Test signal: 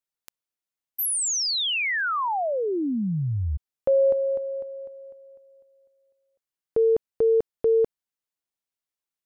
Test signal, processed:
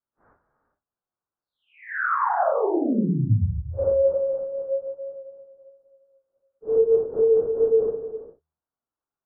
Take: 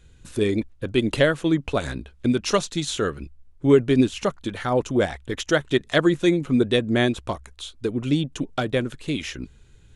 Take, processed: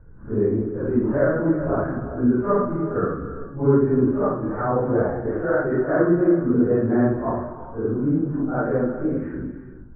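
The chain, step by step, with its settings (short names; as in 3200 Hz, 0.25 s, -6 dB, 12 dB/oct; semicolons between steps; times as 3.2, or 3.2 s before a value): phase scrambler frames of 0.2 s; steep low-pass 1500 Hz 48 dB/oct; de-hum 78.59 Hz, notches 2; in parallel at +2.5 dB: compressor, threshold -30 dBFS; on the sum: non-linear reverb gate 0.44 s flat, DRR 7.5 dB; gain -1.5 dB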